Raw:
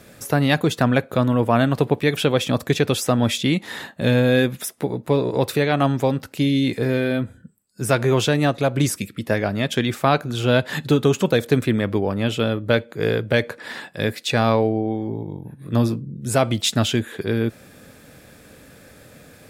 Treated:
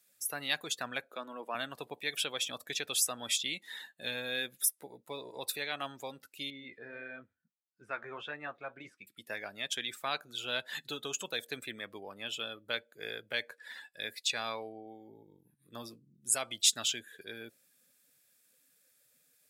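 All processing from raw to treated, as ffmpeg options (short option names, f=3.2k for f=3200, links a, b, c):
-filter_complex "[0:a]asettb=1/sr,asplit=3[a][b][c];[a]atrim=end=1.114[d];[b]atrim=start=1.11:end=1.55,asetpts=PTS-STARTPTS,afade=t=in:d=0.004:c=qsin,afade=t=out:st=0.436:d=0.004:c=qsin,highpass=f=220:w=0.5412,highpass=f=220:w=1.3066,aemphasis=mode=reproduction:type=cd[e];[c]atrim=start=1.546[f];[d][e]acrossfade=d=0.004:c1=hsin:c2=qsin[g];[g][f]acrossfade=d=0.004:c1=qsin:c2=hsin,asettb=1/sr,asplit=3[h][i][j];[h]atrim=end=6.504[k];[i]atrim=start=6.5:end=9.07,asetpts=PTS-STARTPTS,afade=t=in:d=0.004:c=qsin,afade=t=out:st=2.566:d=0.004:c=qsin,lowpass=2.2k,equalizer=f=1.4k:t=o:w=1.5:g=5,flanger=delay=6.5:depth=6.7:regen=-59:speed=1.6:shape=sinusoidal[l];[j]atrim=start=9.066[m];[k][l]acrossfade=d=0.004:c1=hsin:c2=qsin[n];[n][m]acrossfade=d=0.004:c1=qsin:c2=hsin,afftdn=nr=16:nf=-34,aderivative"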